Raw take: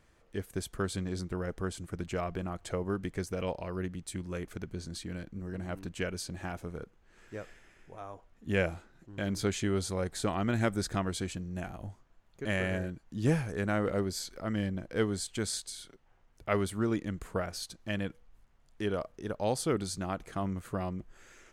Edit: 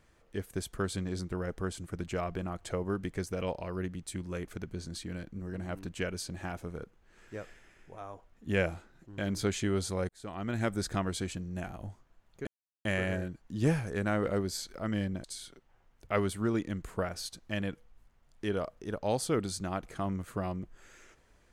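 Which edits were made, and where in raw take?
10.09–11.07 s: fade in equal-power
12.47 s: insert silence 0.38 s
14.86–15.61 s: delete

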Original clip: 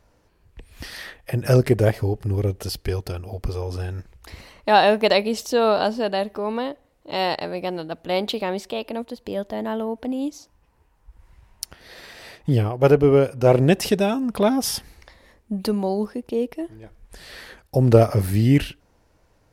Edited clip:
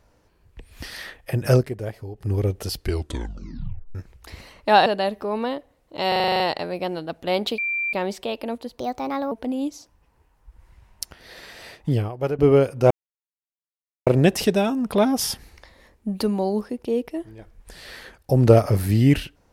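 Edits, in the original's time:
1.54–2.30 s: dip -12.5 dB, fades 0.14 s
2.82 s: tape stop 1.13 s
4.86–6.00 s: delete
7.22 s: stutter 0.04 s, 9 plays
8.40 s: add tone 2.36 kHz -22 dBFS 0.35 s
9.25–9.92 s: speed 125%
12.34–12.99 s: fade out, to -14 dB
13.51 s: insert silence 1.16 s

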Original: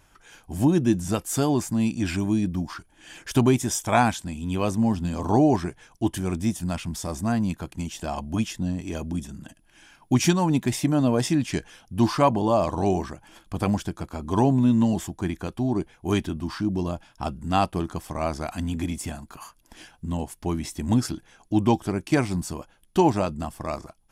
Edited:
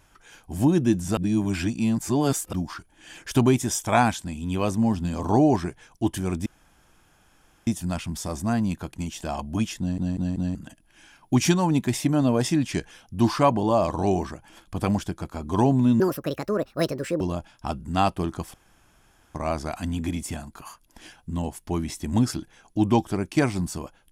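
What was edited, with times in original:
1.17–2.53 s: reverse
6.46 s: insert room tone 1.21 s
8.58 s: stutter in place 0.19 s, 4 plays
14.79–16.77 s: speed 164%
18.10 s: insert room tone 0.81 s

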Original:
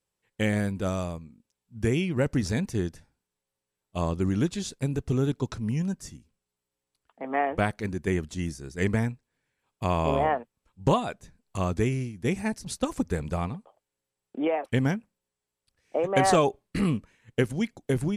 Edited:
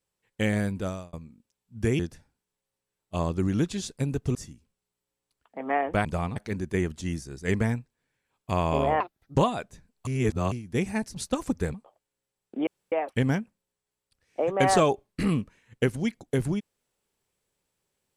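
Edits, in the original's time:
0.77–1.13 s: fade out
1.99–2.81 s: delete
5.17–5.99 s: delete
10.33–10.85 s: speed 149%
11.57–12.02 s: reverse
13.24–13.55 s: move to 7.69 s
14.48 s: insert room tone 0.25 s

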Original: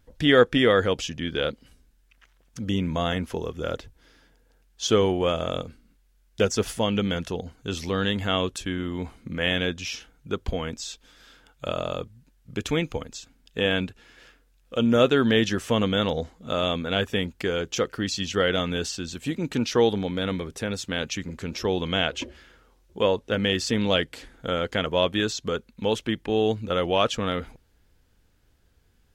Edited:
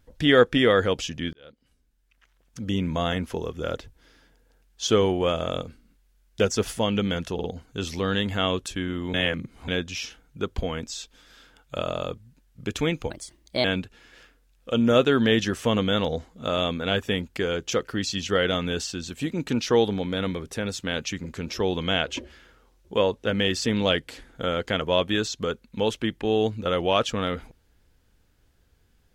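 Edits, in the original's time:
1.33–2.83 s: fade in
7.34 s: stutter 0.05 s, 3 plays
9.04–9.58 s: reverse
13.00–13.69 s: speed 127%

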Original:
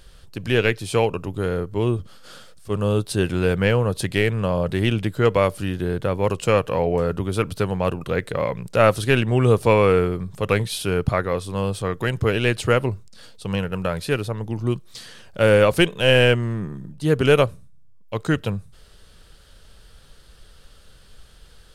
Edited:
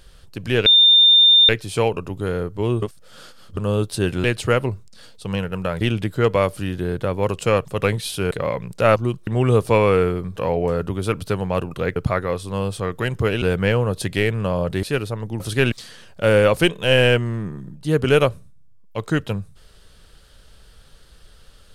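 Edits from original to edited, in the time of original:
0.66 s: add tone 3.61 kHz -8.5 dBFS 0.83 s
1.99–2.74 s: reverse
3.41–4.82 s: swap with 12.44–14.01 s
6.66–8.26 s: swap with 10.32–10.98 s
8.91–9.23 s: swap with 14.58–14.89 s

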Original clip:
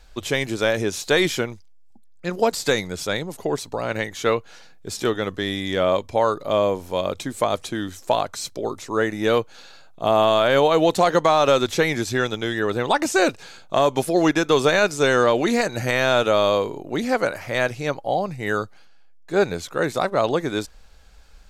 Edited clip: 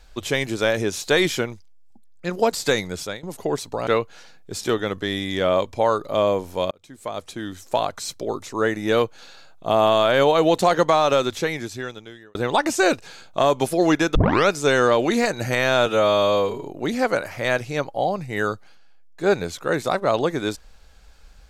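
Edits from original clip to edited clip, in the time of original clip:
2.97–3.23 s: fade out, to -22 dB
3.87–4.23 s: delete
7.07–8.72 s: fade in equal-power
11.23–12.71 s: fade out
14.51 s: tape start 0.34 s
16.22–16.74 s: stretch 1.5×

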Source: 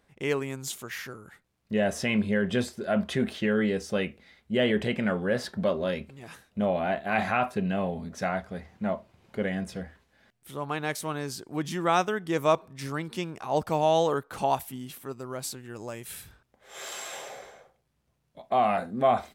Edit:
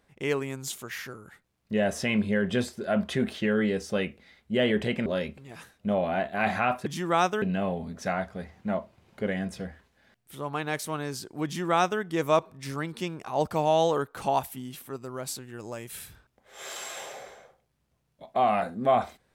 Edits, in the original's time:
5.06–5.78 s: delete
11.61–12.17 s: copy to 7.58 s

